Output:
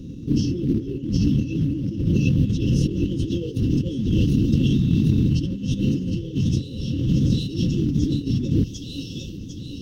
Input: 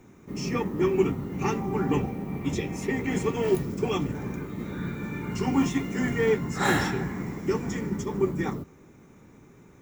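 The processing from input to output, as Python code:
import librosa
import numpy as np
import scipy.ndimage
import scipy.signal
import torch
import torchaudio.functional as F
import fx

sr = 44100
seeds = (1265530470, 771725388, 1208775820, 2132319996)

p1 = fx.high_shelf(x, sr, hz=3900.0, db=5.5)
p2 = p1 + fx.echo_wet_highpass(p1, sr, ms=750, feedback_pct=48, hz=1500.0, wet_db=-4.5, dry=0)
p3 = fx.over_compress(p2, sr, threshold_db=-34.0, ratio=-1.0)
p4 = fx.pitch_keep_formants(p3, sr, semitones=-5.5)
p5 = fx.brickwall_bandstop(p4, sr, low_hz=540.0, high_hz=2600.0)
p6 = fx.low_shelf(p5, sr, hz=200.0, db=10.5)
p7 = fx.quant_float(p6, sr, bits=4)
p8 = scipy.signal.savgol_filter(p7, 15, 4, mode='constant')
y = F.gain(torch.from_numpy(p8), 8.0).numpy()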